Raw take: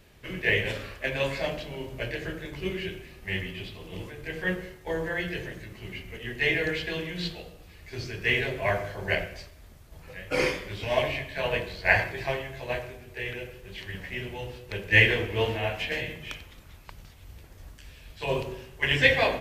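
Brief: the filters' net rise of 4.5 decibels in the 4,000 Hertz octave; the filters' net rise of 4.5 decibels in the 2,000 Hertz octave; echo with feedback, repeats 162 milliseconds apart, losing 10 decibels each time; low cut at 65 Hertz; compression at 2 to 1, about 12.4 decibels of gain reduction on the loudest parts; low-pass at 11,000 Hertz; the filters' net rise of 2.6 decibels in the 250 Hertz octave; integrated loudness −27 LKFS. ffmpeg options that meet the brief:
ffmpeg -i in.wav -af "highpass=65,lowpass=11000,equalizer=frequency=250:width_type=o:gain=4,equalizer=frequency=2000:width_type=o:gain=4,equalizer=frequency=4000:width_type=o:gain=4.5,acompressor=threshold=-33dB:ratio=2,aecho=1:1:162|324|486|648:0.316|0.101|0.0324|0.0104,volume=5.5dB" out.wav

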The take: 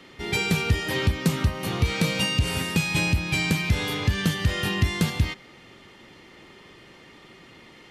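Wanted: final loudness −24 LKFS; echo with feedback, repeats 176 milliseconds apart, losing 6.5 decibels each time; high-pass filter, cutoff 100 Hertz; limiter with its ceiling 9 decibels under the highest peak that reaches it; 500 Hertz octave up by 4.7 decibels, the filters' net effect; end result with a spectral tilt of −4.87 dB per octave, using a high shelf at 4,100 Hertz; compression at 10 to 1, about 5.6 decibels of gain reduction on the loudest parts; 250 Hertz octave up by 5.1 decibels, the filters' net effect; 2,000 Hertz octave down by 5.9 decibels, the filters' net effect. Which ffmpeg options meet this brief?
ffmpeg -i in.wav -af "highpass=100,equalizer=frequency=250:width_type=o:gain=7.5,equalizer=frequency=500:width_type=o:gain=3.5,equalizer=frequency=2000:width_type=o:gain=-6.5,highshelf=frequency=4100:gain=-4,acompressor=threshold=-22dB:ratio=10,alimiter=limit=-19dB:level=0:latency=1,aecho=1:1:176|352|528|704|880|1056:0.473|0.222|0.105|0.0491|0.0231|0.0109,volume=4.5dB" out.wav

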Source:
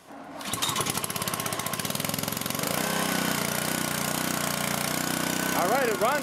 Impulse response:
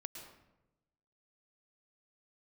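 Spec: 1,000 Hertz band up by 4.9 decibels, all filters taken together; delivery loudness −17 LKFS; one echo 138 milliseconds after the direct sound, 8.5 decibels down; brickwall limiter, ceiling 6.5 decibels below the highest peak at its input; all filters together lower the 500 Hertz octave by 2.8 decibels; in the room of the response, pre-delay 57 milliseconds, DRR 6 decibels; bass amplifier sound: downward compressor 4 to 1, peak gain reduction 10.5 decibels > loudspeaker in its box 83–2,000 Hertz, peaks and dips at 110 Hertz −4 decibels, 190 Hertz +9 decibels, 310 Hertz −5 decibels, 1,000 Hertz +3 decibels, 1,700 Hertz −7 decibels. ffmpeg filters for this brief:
-filter_complex "[0:a]equalizer=frequency=500:width_type=o:gain=-6,equalizer=frequency=1000:width_type=o:gain=6.5,alimiter=limit=-16dB:level=0:latency=1,aecho=1:1:138:0.376,asplit=2[link_01][link_02];[1:a]atrim=start_sample=2205,adelay=57[link_03];[link_02][link_03]afir=irnorm=-1:irlink=0,volume=-3dB[link_04];[link_01][link_04]amix=inputs=2:normalize=0,acompressor=threshold=-33dB:ratio=4,highpass=frequency=83:width=0.5412,highpass=frequency=83:width=1.3066,equalizer=frequency=110:width_type=q:width=4:gain=-4,equalizer=frequency=190:width_type=q:width=4:gain=9,equalizer=frequency=310:width_type=q:width=4:gain=-5,equalizer=frequency=1000:width_type=q:width=4:gain=3,equalizer=frequency=1700:width_type=q:width=4:gain=-7,lowpass=frequency=2000:width=0.5412,lowpass=frequency=2000:width=1.3066,volume=19dB"

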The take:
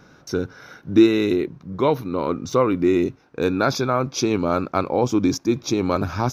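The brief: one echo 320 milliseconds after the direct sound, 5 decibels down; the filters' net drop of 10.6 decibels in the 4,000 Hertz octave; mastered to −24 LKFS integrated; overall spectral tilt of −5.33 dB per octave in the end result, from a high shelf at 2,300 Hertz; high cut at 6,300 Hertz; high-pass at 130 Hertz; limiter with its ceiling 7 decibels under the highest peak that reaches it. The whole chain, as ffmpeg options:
ffmpeg -i in.wav -af "highpass=130,lowpass=6300,highshelf=frequency=2300:gain=-7,equalizer=frequency=4000:width_type=o:gain=-5.5,alimiter=limit=-11.5dB:level=0:latency=1,aecho=1:1:320:0.562,volume=-1dB" out.wav

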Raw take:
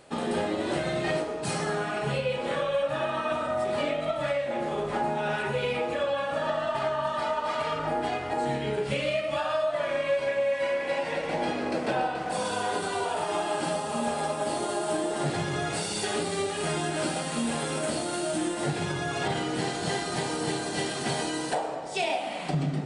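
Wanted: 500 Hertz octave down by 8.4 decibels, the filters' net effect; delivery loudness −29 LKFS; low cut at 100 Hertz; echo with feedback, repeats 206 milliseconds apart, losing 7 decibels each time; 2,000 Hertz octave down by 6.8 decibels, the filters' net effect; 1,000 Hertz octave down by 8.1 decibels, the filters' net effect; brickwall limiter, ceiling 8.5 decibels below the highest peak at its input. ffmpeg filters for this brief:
ffmpeg -i in.wav -af "highpass=100,equalizer=frequency=500:width_type=o:gain=-8.5,equalizer=frequency=1000:width_type=o:gain=-6,equalizer=frequency=2000:width_type=o:gain=-6.5,alimiter=level_in=4.5dB:limit=-24dB:level=0:latency=1,volume=-4.5dB,aecho=1:1:206|412|618|824|1030:0.447|0.201|0.0905|0.0407|0.0183,volume=7.5dB" out.wav

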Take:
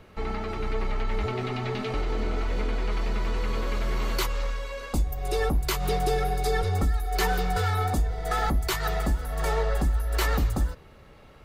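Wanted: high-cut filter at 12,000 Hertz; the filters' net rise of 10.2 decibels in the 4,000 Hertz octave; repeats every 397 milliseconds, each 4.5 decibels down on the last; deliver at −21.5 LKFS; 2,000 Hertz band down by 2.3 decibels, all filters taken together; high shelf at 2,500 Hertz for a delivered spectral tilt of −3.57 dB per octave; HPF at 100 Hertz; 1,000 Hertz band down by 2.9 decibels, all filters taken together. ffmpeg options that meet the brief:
ffmpeg -i in.wav -af "highpass=100,lowpass=12000,equalizer=frequency=1000:width_type=o:gain=-4.5,equalizer=frequency=2000:width_type=o:gain=-7,highshelf=frequency=2500:gain=8.5,equalizer=frequency=4000:width_type=o:gain=7,aecho=1:1:397|794|1191|1588|1985|2382|2779|3176|3573:0.596|0.357|0.214|0.129|0.0772|0.0463|0.0278|0.0167|0.01,volume=5dB" out.wav

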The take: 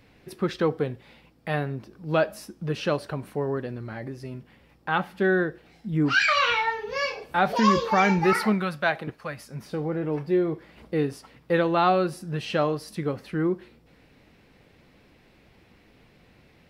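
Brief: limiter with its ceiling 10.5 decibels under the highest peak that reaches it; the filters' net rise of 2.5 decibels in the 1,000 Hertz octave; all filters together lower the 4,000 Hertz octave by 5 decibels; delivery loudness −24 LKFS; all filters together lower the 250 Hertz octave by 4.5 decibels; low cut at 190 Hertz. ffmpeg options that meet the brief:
ffmpeg -i in.wav -af "highpass=190,equalizer=frequency=250:width_type=o:gain=-5,equalizer=frequency=1000:width_type=o:gain=4,equalizer=frequency=4000:width_type=o:gain=-7.5,volume=5.5dB,alimiter=limit=-12dB:level=0:latency=1" out.wav

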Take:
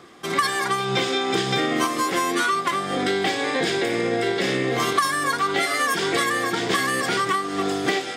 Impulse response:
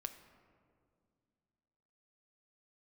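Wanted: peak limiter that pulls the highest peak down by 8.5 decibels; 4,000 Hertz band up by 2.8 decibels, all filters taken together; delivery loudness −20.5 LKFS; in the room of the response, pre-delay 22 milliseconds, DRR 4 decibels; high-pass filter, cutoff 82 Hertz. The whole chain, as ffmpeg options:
-filter_complex "[0:a]highpass=82,equalizer=frequency=4000:width_type=o:gain=3.5,alimiter=limit=-16.5dB:level=0:latency=1,asplit=2[link_01][link_02];[1:a]atrim=start_sample=2205,adelay=22[link_03];[link_02][link_03]afir=irnorm=-1:irlink=0,volume=-1dB[link_04];[link_01][link_04]amix=inputs=2:normalize=0,volume=2.5dB"

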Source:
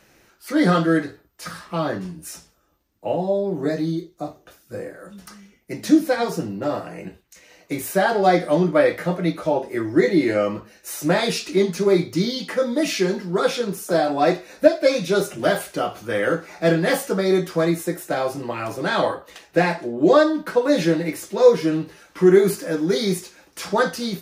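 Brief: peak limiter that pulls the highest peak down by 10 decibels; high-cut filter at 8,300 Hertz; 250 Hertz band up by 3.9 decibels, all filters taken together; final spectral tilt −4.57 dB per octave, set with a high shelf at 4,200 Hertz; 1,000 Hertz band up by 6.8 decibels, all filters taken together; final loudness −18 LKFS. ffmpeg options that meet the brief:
ffmpeg -i in.wav -af "lowpass=8300,equalizer=frequency=250:width_type=o:gain=5,equalizer=frequency=1000:width_type=o:gain=9,highshelf=frequency=4200:gain=6,volume=1.5dB,alimiter=limit=-6dB:level=0:latency=1" out.wav

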